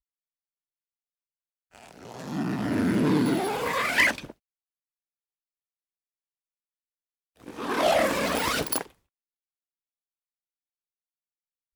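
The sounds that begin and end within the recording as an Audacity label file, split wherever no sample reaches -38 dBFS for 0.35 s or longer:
1.750000	4.310000	sound
7.440000	8.850000	sound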